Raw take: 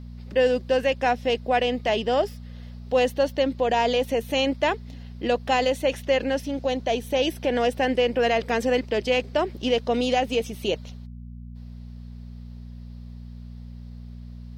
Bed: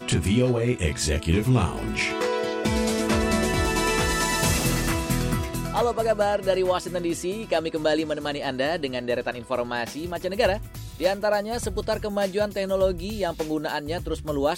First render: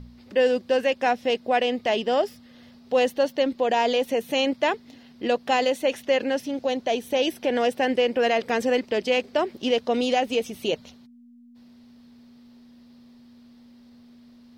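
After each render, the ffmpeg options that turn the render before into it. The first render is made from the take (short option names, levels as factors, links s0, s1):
-af "bandreject=f=60:t=h:w=4,bandreject=f=120:t=h:w=4,bandreject=f=180:t=h:w=4"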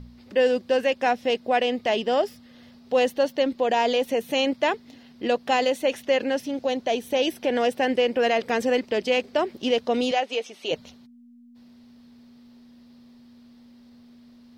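-filter_complex "[0:a]asettb=1/sr,asplit=3[s0][s1][s2];[s0]atrim=end=10.114[s3];[s1]atrim=start=10.11:end=10.71,asetpts=PTS-STARTPTS,afade=t=in:d=0.004:c=qsin,afade=t=out:st=0.596:d=0.004:c=qsin,highpass=490,lowpass=6000[s4];[s2]atrim=start=10.706[s5];[s3][s4]acrossfade=d=0.004:c1=hsin:c2=qsin[s6];[s6][s5]acrossfade=d=0.004:c1=qsin:c2=hsin"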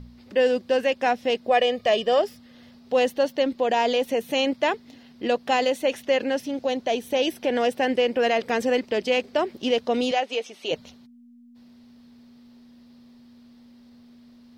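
-filter_complex "[0:a]asettb=1/sr,asplit=3[s0][s1][s2];[s0]atrim=end=1.494[s3];[s1]atrim=start=1.49:end=2.19,asetpts=PTS-STARTPTS,afade=t=in:d=0.004:c=qsin,afade=t=out:st=0.696:d=0.004:c=qsin,aecho=1:1:1.7:0.64,atrim=end_sample=30870[s4];[s2]atrim=start=2.186[s5];[s3][s4]acrossfade=d=0.004:c1=hsin:c2=qsin[s6];[s6][s5]acrossfade=d=0.004:c1=qsin:c2=hsin"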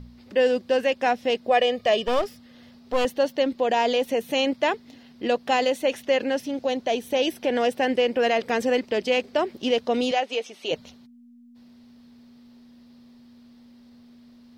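-filter_complex "[0:a]asettb=1/sr,asplit=3[s0][s1][s2];[s0]atrim=end=2.064[s3];[s1]atrim=start=2.06:end=3.05,asetpts=PTS-STARTPTS,afade=t=in:d=0.004:c=qsin,afade=t=out:st=0.986:d=0.004:c=qsin,aeval=exprs='clip(val(0),-1,0.0299)':c=same[s4];[s2]atrim=start=3.046[s5];[s3][s4]acrossfade=d=0.004:c1=hsin:c2=qsin[s6];[s6][s5]acrossfade=d=0.004:c1=qsin:c2=hsin"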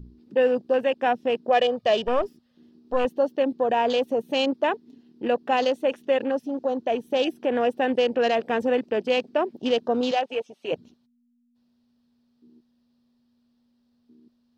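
-af "afwtdn=0.0224,equalizer=f=2100:t=o:w=0.24:g=-8"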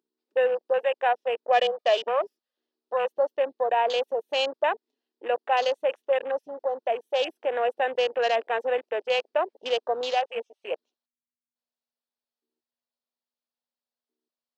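-af "highpass=f=490:w=0.5412,highpass=f=490:w=1.3066,afwtdn=0.0141"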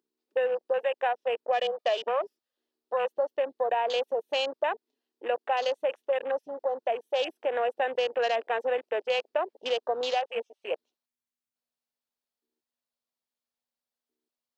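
-af "acompressor=threshold=0.0708:ratio=6"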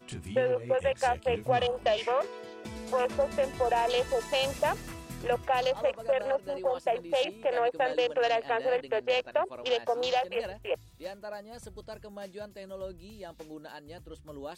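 -filter_complex "[1:a]volume=0.133[s0];[0:a][s0]amix=inputs=2:normalize=0"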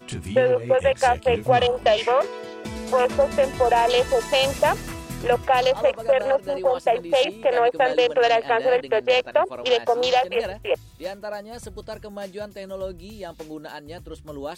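-af "volume=2.66"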